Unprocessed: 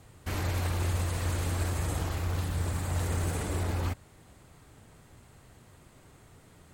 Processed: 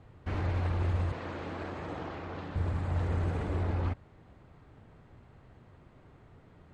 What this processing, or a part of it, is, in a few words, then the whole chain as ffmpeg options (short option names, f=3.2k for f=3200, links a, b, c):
phone in a pocket: -filter_complex "[0:a]lowpass=3.6k,highshelf=f=2.2k:g=-9,asettb=1/sr,asplit=3[a][b][c];[a]atrim=end=1.124[d];[b]atrim=start=1.12:end=2.56,asetpts=PTS-STARTPTS,afade=t=in:d=0.004:c=qsin,afade=t=out:st=1.436:d=0.004:c=qsin,acrossover=split=170 7500:gain=0.126 1 0.0708[e][f][g];[e][f][g]amix=inputs=3:normalize=0[h];[c]atrim=start=2.556[i];[d][h]acrossfade=d=0.004:c1=hsin:c2=qsin[j];[j][i]acrossfade=d=0.004:c1=qsin:c2=hsin"